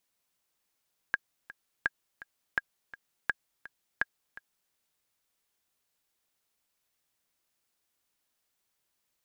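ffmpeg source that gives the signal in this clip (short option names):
-f lavfi -i "aevalsrc='pow(10,(-13-18*gte(mod(t,2*60/167),60/167))/20)*sin(2*PI*1630*mod(t,60/167))*exp(-6.91*mod(t,60/167)/0.03)':d=3.59:s=44100"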